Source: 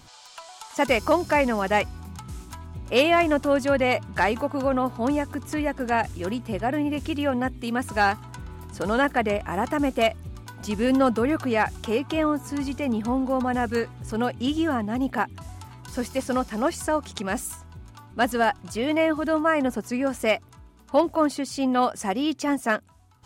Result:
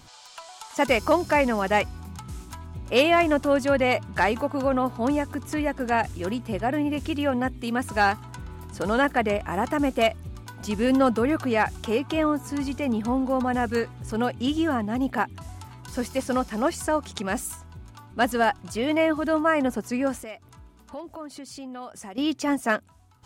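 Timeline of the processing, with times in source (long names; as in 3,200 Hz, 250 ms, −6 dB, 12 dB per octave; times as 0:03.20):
0:20.19–0:22.18: downward compressor 3 to 1, threshold −40 dBFS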